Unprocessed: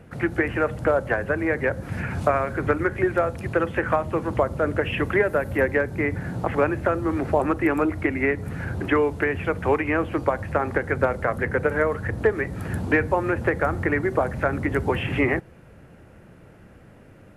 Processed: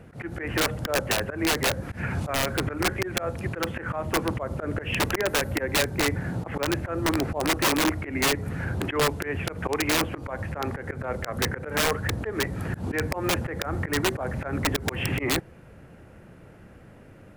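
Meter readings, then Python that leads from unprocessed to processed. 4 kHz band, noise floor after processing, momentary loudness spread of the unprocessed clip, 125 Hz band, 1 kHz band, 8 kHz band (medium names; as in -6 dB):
+13.5 dB, -49 dBFS, 4 LU, -2.0 dB, -4.0 dB, no reading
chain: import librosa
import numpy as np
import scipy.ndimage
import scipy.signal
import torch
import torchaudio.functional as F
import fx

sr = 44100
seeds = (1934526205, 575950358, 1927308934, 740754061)

y = fx.auto_swell(x, sr, attack_ms=125.0)
y = (np.mod(10.0 ** (16.5 / 20.0) * y + 1.0, 2.0) - 1.0) / 10.0 ** (16.5 / 20.0)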